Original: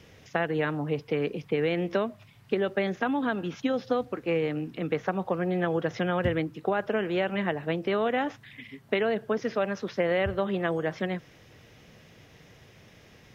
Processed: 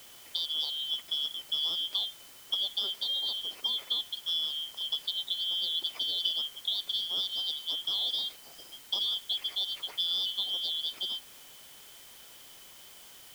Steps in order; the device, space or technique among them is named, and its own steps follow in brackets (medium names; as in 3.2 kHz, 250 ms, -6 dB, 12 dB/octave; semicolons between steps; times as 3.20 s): split-band scrambled radio (four frequency bands reordered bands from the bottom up 3412; band-pass 380–2800 Hz; white noise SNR 18 dB)